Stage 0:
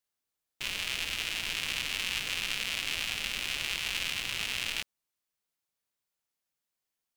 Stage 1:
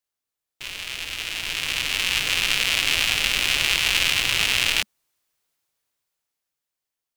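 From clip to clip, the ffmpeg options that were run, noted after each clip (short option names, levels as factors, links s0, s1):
-af "equalizer=f=210:t=o:w=0.21:g=-9.5,dynaudnorm=f=210:g=17:m=6.68"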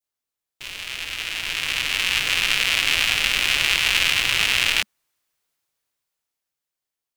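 -af "adynamicequalizer=threshold=0.0224:dfrequency=1700:dqfactor=0.74:tfrequency=1700:tqfactor=0.74:attack=5:release=100:ratio=0.375:range=2:mode=boostabove:tftype=bell,volume=0.891"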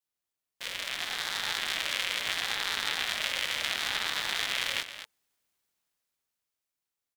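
-af "acompressor=threshold=0.0708:ratio=6,aecho=1:1:224:0.282,aeval=exprs='val(0)*sin(2*PI*720*n/s+720*0.25/0.73*sin(2*PI*0.73*n/s))':c=same"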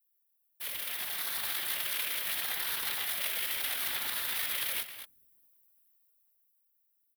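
-filter_complex "[0:a]afftfilt=real='hypot(re,im)*cos(2*PI*random(0))':imag='hypot(re,im)*sin(2*PI*random(1))':win_size=512:overlap=0.75,acrossover=split=440|1200[s0][s1][s2];[s0]asplit=5[s3][s4][s5][s6][s7];[s4]adelay=203,afreqshift=-140,volume=0.1[s8];[s5]adelay=406,afreqshift=-280,volume=0.0531[s9];[s6]adelay=609,afreqshift=-420,volume=0.0282[s10];[s7]adelay=812,afreqshift=-560,volume=0.015[s11];[s3][s8][s9][s10][s11]amix=inputs=5:normalize=0[s12];[s2]aexciter=amount=10.8:drive=4.8:freq=9900[s13];[s12][s1][s13]amix=inputs=3:normalize=0"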